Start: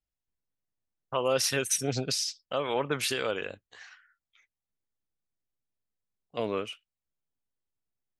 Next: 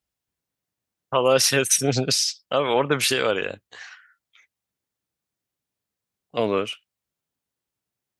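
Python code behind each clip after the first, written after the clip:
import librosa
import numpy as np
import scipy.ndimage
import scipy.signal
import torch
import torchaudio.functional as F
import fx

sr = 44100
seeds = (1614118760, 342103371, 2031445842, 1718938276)

y = scipy.signal.sosfilt(scipy.signal.butter(2, 75.0, 'highpass', fs=sr, output='sos'), x)
y = F.gain(torch.from_numpy(y), 8.5).numpy()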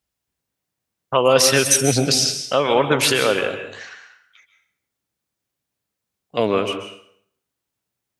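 y = fx.rev_plate(x, sr, seeds[0], rt60_s=0.66, hf_ratio=0.85, predelay_ms=120, drr_db=7.5)
y = F.gain(torch.from_numpy(y), 3.5).numpy()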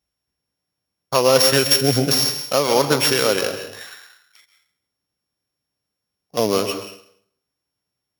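y = np.r_[np.sort(x[:len(x) // 8 * 8].reshape(-1, 8), axis=1).ravel(), x[len(x) // 8 * 8:]]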